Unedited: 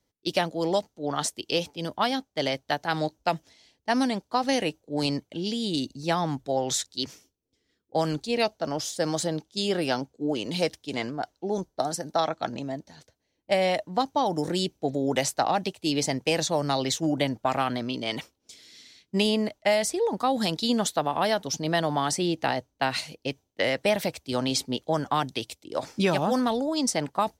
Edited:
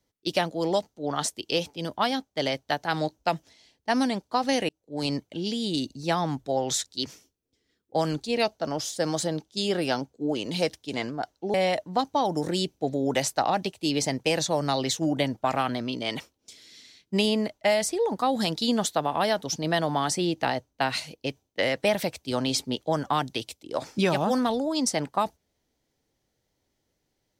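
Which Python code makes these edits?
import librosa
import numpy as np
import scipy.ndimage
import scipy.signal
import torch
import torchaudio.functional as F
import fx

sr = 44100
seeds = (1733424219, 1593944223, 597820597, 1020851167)

y = fx.edit(x, sr, fx.fade_in_span(start_s=4.69, length_s=0.45),
    fx.cut(start_s=11.54, length_s=2.01), tone=tone)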